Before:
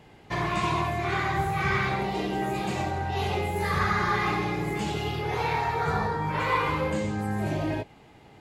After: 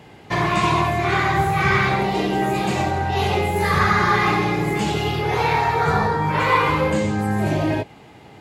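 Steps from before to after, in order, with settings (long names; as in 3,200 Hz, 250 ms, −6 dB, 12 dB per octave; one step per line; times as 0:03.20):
high-pass filter 69 Hz
level +8 dB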